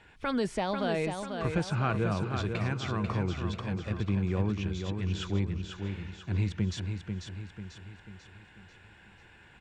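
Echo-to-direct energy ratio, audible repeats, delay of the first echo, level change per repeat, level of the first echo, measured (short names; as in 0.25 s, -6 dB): -5.0 dB, 5, 0.492 s, -6.5 dB, -6.0 dB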